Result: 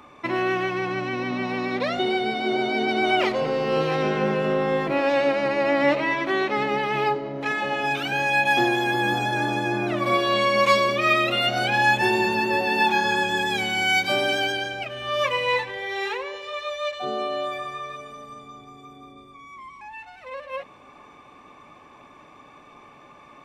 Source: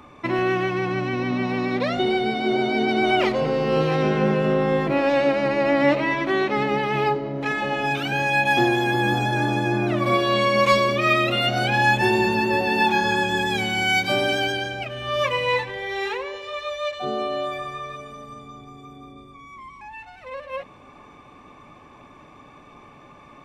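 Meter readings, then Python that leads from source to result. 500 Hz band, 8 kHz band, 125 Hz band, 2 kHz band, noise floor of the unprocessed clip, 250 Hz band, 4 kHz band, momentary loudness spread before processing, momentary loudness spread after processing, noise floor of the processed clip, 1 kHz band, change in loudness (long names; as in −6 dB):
−2.0 dB, 0.0 dB, −6.5 dB, 0.0 dB, −48 dBFS, −3.5 dB, 0.0 dB, 13 LU, 14 LU, −49 dBFS, −0.5 dB, −1.0 dB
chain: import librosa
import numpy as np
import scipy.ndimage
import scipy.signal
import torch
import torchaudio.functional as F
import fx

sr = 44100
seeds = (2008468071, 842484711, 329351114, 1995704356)

y = fx.low_shelf(x, sr, hz=230.0, db=-9.0)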